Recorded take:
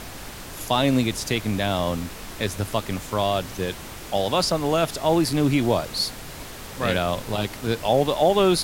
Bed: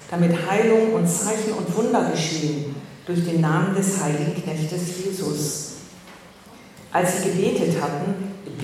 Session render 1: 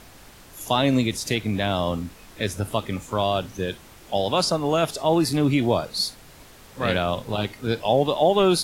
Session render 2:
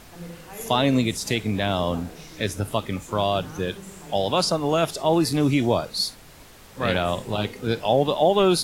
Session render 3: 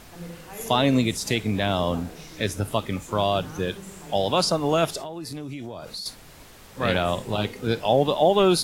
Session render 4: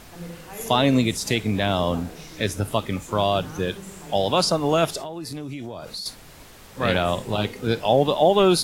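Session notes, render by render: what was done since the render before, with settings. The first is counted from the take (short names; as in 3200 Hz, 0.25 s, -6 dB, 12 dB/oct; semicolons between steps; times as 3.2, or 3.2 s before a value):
noise print and reduce 10 dB
add bed -20.5 dB
4.98–6.06 compressor 10:1, threshold -31 dBFS
gain +1.5 dB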